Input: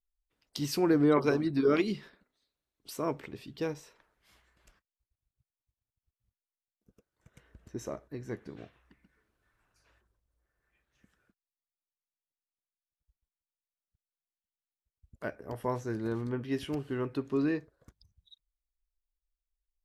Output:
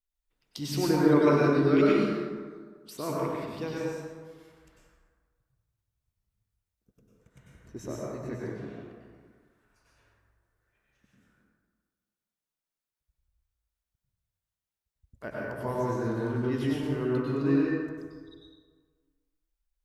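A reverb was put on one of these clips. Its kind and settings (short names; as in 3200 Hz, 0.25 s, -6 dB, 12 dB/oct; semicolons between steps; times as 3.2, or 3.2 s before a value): plate-style reverb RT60 1.6 s, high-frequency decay 0.5×, pre-delay 85 ms, DRR -5.5 dB; gain -2.5 dB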